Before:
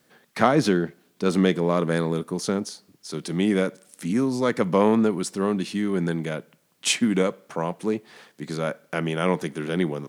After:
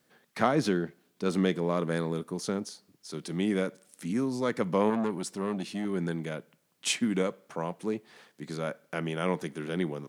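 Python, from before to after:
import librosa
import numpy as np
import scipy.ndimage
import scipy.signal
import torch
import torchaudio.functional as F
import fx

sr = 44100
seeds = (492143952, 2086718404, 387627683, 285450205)

y = fx.transformer_sat(x, sr, knee_hz=580.0, at=(4.9, 5.85))
y = F.gain(torch.from_numpy(y), -6.5).numpy()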